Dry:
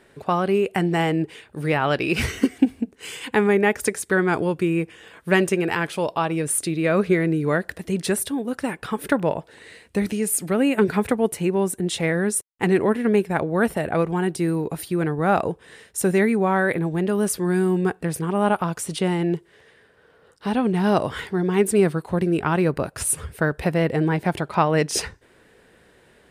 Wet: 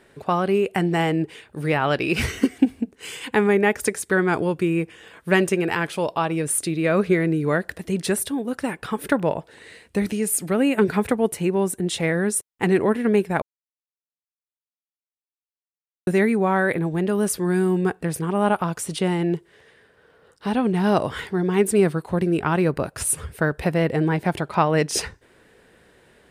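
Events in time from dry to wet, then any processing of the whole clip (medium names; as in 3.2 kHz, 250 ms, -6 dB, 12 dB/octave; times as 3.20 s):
13.42–16.07 s: mute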